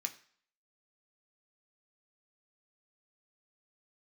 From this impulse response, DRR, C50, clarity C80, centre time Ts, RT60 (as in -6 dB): 4.0 dB, 15.0 dB, 18.5 dB, 7 ms, 0.50 s